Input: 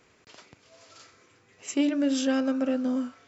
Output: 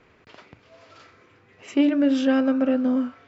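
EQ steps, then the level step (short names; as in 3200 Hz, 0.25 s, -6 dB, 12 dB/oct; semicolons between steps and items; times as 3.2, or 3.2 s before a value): LPF 2900 Hz 12 dB/oct; low shelf 67 Hz +8 dB; notches 60/120 Hz; +5.0 dB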